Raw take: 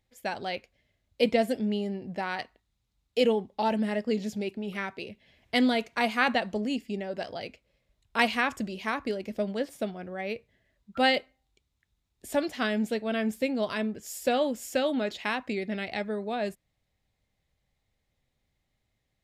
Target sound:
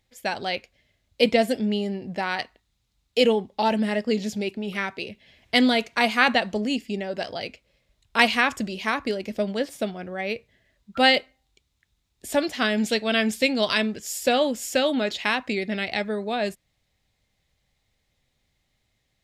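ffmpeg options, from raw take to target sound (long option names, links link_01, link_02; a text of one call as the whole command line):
ffmpeg -i in.wav -af "asetnsamples=nb_out_samples=441:pad=0,asendcmd='12.78 equalizer g 12.5;13.99 equalizer g 5.5',equalizer=frequency=4600:width_type=o:width=2.6:gain=4.5,volume=4dB" out.wav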